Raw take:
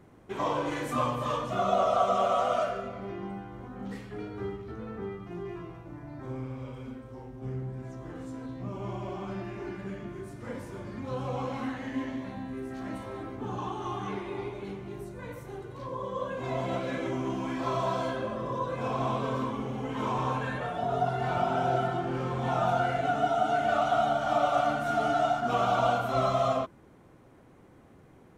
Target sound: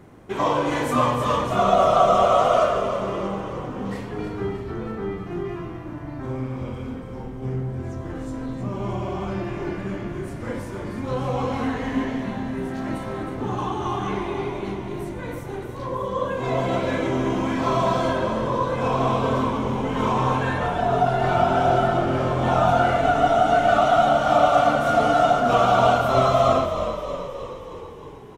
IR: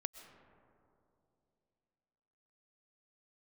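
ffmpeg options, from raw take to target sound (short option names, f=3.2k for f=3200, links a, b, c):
-filter_complex "[0:a]asplit=9[a][b][c][d][e][f][g][h][i];[b]adelay=314,afreqshift=-42,volume=-9dB[j];[c]adelay=628,afreqshift=-84,volume=-12.9dB[k];[d]adelay=942,afreqshift=-126,volume=-16.8dB[l];[e]adelay=1256,afreqshift=-168,volume=-20.6dB[m];[f]adelay=1570,afreqshift=-210,volume=-24.5dB[n];[g]adelay=1884,afreqshift=-252,volume=-28.4dB[o];[h]adelay=2198,afreqshift=-294,volume=-32.3dB[p];[i]adelay=2512,afreqshift=-336,volume=-36.1dB[q];[a][j][k][l][m][n][o][p][q]amix=inputs=9:normalize=0,volume=8dB"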